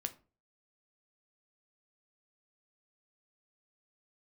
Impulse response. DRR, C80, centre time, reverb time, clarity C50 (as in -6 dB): 7.5 dB, 22.5 dB, 5 ms, 0.35 s, 17.0 dB